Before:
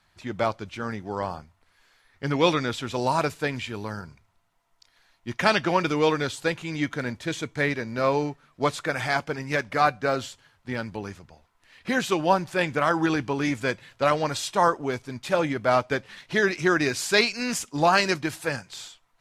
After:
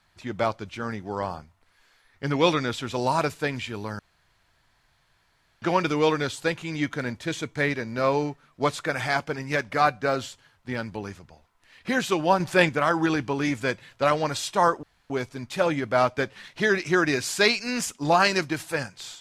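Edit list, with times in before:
3.99–5.62 room tone
12.4–12.69 gain +5.5 dB
14.83 insert room tone 0.27 s

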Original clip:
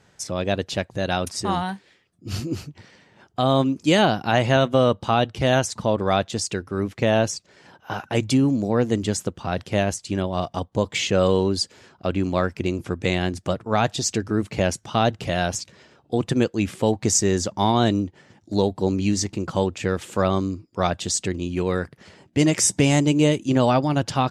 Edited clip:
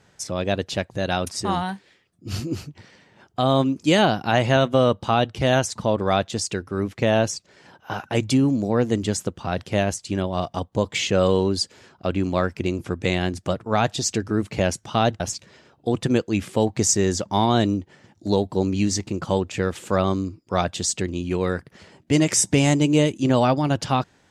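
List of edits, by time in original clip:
15.2–15.46 cut

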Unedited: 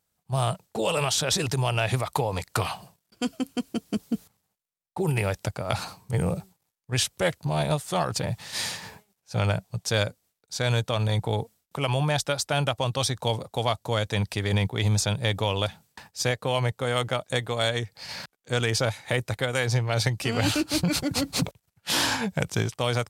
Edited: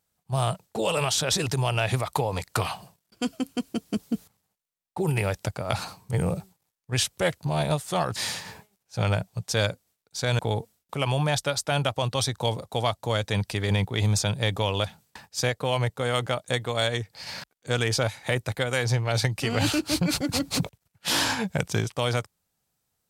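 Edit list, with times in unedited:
8.16–8.53 cut
10.76–11.21 cut

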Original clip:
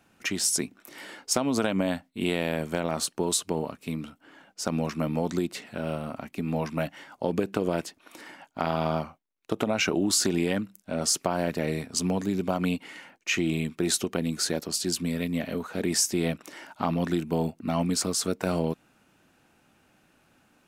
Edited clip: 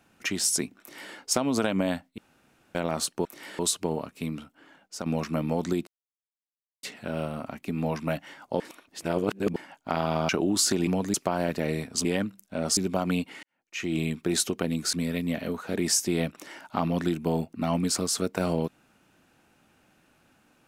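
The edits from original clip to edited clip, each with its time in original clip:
0.8–1.14 copy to 3.25
2.18–2.75 room tone
4.03–4.72 fade out, to -6.5 dB
5.53 insert silence 0.96 s
7.3–8.26 reverse
8.99–9.83 cut
10.41–11.13 swap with 12.04–12.31
12.97–13.52 fade in quadratic
14.47–14.99 cut

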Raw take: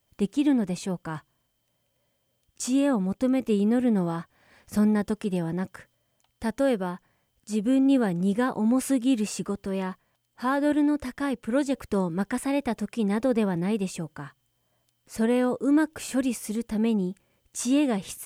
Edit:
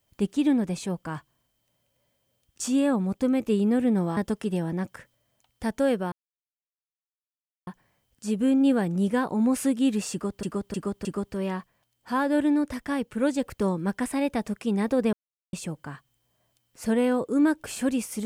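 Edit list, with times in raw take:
4.17–4.97 cut
6.92 insert silence 1.55 s
9.37–9.68 loop, 4 plays
13.45–13.85 mute

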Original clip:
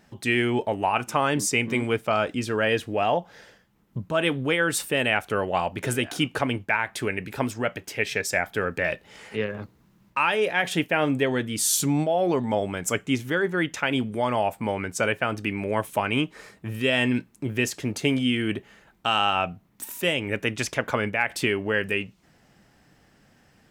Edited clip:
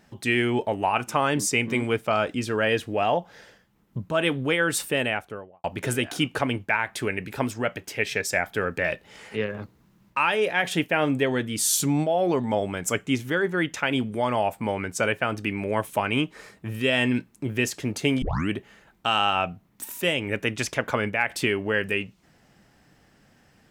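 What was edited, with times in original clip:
4.89–5.64 studio fade out
18.22 tape start 0.27 s

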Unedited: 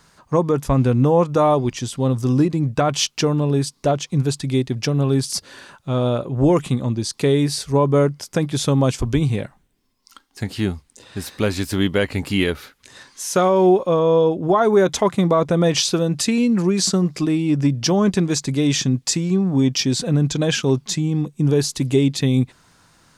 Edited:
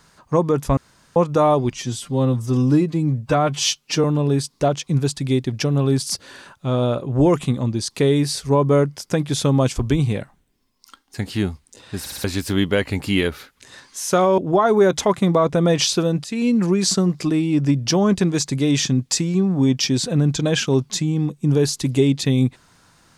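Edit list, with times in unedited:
0.77–1.16 room tone
1.73–3.27 stretch 1.5×
11.23 stutter in place 0.06 s, 4 plays
13.61–14.34 cut
16.2–16.45 fade in, from -18.5 dB

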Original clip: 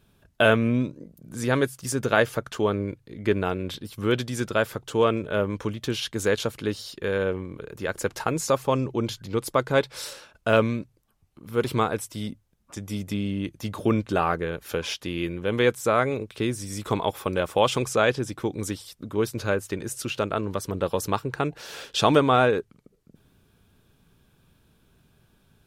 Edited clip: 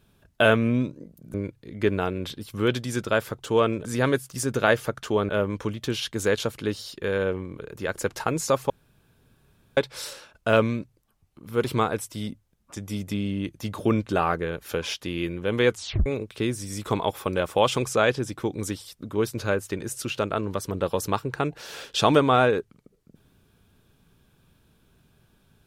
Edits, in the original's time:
1.34–2.78 move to 5.29
8.7–9.77 room tone
15.7 tape stop 0.36 s

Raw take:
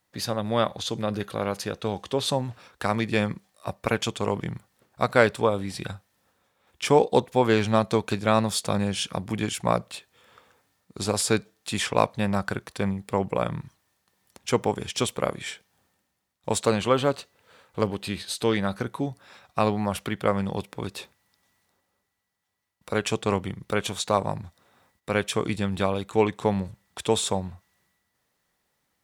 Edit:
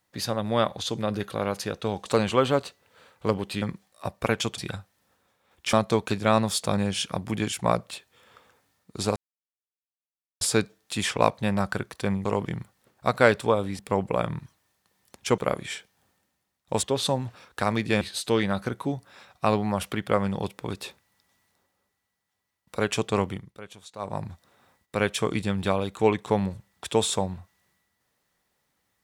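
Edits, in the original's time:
2.06–3.24 swap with 16.59–18.15
4.2–5.74 move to 13.01
6.89–7.74 cut
11.17 insert silence 1.25 s
14.6–15.14 cut
23.43–24.38 dip -17 dB, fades 0.26 s

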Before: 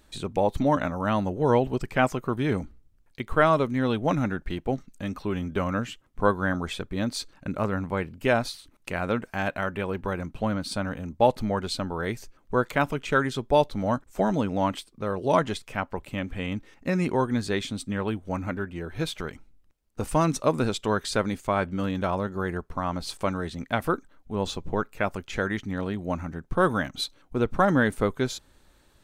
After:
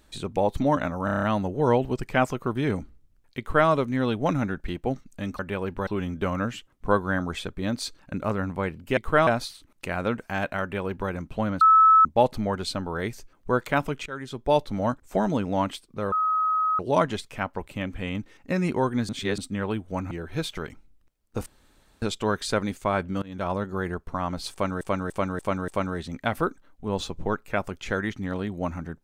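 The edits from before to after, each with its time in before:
1.05 stutter 0.03 s, 7 plays
3.21–3.51 copy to 8.31
9.66–10.14 copy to 5.21
10.65–11.09 bleep 1300 Hz -12 dBFS
13.1–13.64 fade in, from -20 dB
15.16 add tone 1270 Hz -20.5 dBFS 0.67 s
17.46–17.75 reverse
18.48–18.74 cut
20.09–20.65 room tone
21.85–22.15 fade in, from -24 dB
23.15–23.44 loop, 5 plays

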